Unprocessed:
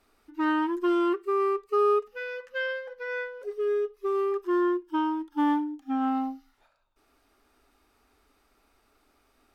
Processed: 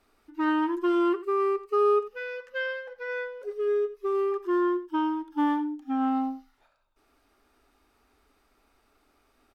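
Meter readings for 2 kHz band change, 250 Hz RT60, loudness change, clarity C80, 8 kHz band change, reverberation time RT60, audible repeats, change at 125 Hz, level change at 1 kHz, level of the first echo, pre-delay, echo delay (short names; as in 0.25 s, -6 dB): -0.5 dB, none, +0.5 dB, none, n/a, none, 1, n/a, 0.0 dB, -15.5 dB, none, 87 ms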